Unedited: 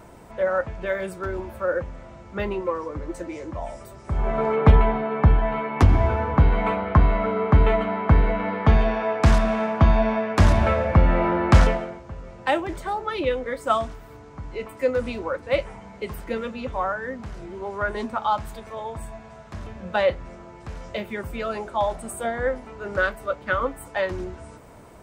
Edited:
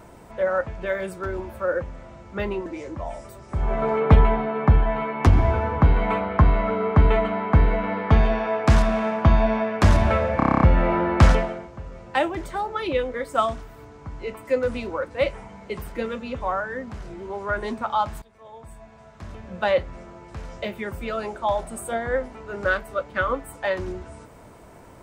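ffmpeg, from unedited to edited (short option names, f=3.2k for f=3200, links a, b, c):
-filter_complex "[0:a]asplit=11[a][b][c][d][e][f][g][h][i][j][k];[a]atrim=end=2.662[l];[b]atrim=start=3.218:end=10.962[m];[c]atrim=start=10.928:end=10.962[n];[d]atrim=start=10.928:end=10.962[o];[e]atrim=start=10.928:end=10.962[p];[f]atrim=start=10.928:end=10.962[q];[g]atrim=start=10.928:end=10.962[r];[h]atrim=start=10.928:end=10.962[s];[i]atrim=start=10.928:end=10.962[t];[j]atrim=start=10.928:end=18.54,asetpts=PTS-STARTPTS,afade=t=out:st=7.608:d=0.004:c=hsin:silence=0.1[u];[k]atrim=start=18.54,asetpts=PTS-STARTPTS,afade=t=in:d=1.48:silence=0.1[v];[l][m]acrossfade=d=0.004:c1=hsin:c2=hsin[w];[w][n]acrossfade=d=0.004:c1=hsin:c2=hsin[x];[x][o]acrossfade=d=0.004:c1=hsin:c2=hsin[y];[y][p]acrossfade=d=0.004:c1=hsin:c2=hsin[z];[z][q]acrossfade=d=0.004:c1=hsin:c2=hsin[aa];[aa][r]acrossfade=d=0.004:c1=hsin:c2=hsin[ab];[ab][s]acrossfade=d=0.004:c1=hsin:c2=hsin[ac];[ac][t]acrossfade=d=0.004:c1=hsin:c2=hsin[ad];[u][v]concat=n=2:v=0:a=1[ae];[ad][ae]acrossfade=d=0.004:c1=hsin:c2=hsin"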